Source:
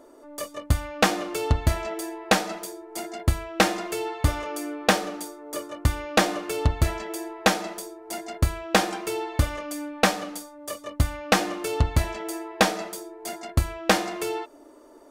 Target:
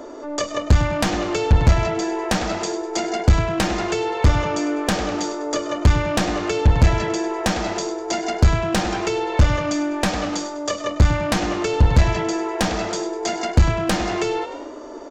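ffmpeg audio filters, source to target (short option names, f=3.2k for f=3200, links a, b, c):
-filter_complex "[0:a]aresample=16000,aeval=exprs='clip(val(0),-1,0.0708)':c=same,aresample=44100,asplit=5[a][b][c][d][e];[b]adelay=100,afreqshift=47,volume=-14.5dB[f];[c]adelay=200,afreqshift=94,volume=-22.9dB[g];[d]adelay=300,afreqshift=141,volume=-31.3dB[h];[e]adelay=400,afreqshift=188,volume=-39.7dB[i];[a][f][g][h][i]amix=inputs=5:normalize=0,aeval=exprs='0.422*sin(PI/2*2.51*val(0)/0.422)':c=same,acrossover=split=180[j][k];[k]acompressor=threshold=-23dB:ratio=10[l];[j][l]amix=inputs=2:normalize=0,volume=3dB"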